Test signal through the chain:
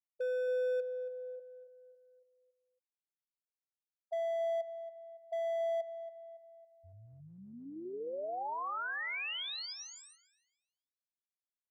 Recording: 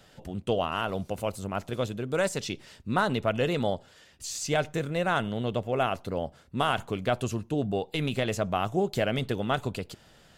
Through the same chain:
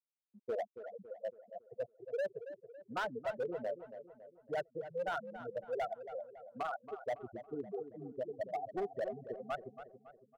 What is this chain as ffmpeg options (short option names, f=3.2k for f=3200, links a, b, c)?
-filter_complex "[0:a]afftfilt=real='re*gte(hypot(re,im),0.224)':imag='im*gte(hypot(re,im),0.224)':win_size=1024:overlap=0.75,acrossover=split=360 5300:gain=0.126 1 0.0891[a][b][c];[a][b][c]amix=inputs=3:normalize=0,volume=27dB,asoftclip=hard,volume=-27dB,asplit=2[d][e];[e]adelay=278,lowpass=f=2k:p=1,volume=-11dB,asplit=2[f][g];[g]adelay=278,lowpass=f=2k:p=1,volume=0.49,asplit=2[h][i];[i]adelay=278,lowpass=f=2k:p=1,volume=0.49,asplit=2[j][k];[k]adelay=278,lowpass=f=2k:p=1,volume=0.49,asplit=2[l][m];[m]adelay=278,lowpass=f=2k:p=1,volume=0.49[n];[f][h][j][l][n]amix=inputs=5:normalize=0[o];[d][o]amix=inputs=2:normalize=0,volume=-5dB"